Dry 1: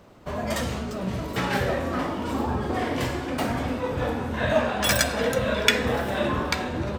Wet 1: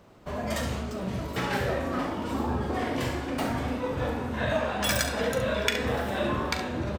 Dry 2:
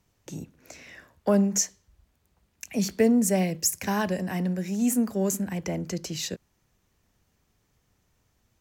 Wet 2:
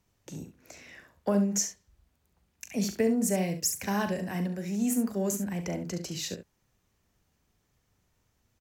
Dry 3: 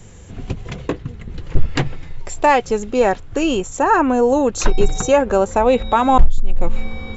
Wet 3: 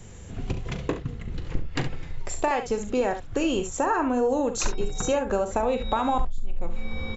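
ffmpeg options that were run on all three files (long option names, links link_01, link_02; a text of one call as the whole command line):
ffmpeg -i in.wav -filter_complex "[0:a]acompressor=threshold=-18dB:ratio=6,asplit=2[link_01][link_02];[link_02]aecho=0:1:40|69:0.266|0.299[link_03];[link_01][link_03]amix=inputs=2:normalize=0,volume=-3.5dB" out.wav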